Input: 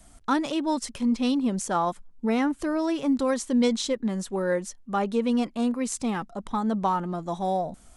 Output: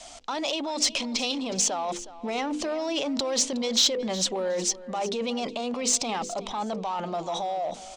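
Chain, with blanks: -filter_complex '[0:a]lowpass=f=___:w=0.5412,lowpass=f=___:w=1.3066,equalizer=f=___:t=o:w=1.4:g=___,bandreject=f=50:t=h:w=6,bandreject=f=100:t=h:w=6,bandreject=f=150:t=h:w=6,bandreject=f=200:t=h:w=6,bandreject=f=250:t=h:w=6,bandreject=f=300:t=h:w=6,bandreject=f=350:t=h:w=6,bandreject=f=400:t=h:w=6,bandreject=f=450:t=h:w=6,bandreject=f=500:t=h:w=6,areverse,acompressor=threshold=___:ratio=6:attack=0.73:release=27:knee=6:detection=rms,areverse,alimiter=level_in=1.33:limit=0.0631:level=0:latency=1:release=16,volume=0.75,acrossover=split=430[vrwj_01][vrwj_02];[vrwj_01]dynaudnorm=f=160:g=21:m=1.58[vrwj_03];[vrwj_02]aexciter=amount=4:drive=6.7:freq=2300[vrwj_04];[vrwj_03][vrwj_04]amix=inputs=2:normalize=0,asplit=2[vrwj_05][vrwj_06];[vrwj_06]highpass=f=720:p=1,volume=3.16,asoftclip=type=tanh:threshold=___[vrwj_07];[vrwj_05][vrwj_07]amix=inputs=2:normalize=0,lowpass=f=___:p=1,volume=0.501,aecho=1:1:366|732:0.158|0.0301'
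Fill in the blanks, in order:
6500, 6500, 660, 13, 0.0562, 0.355, 5100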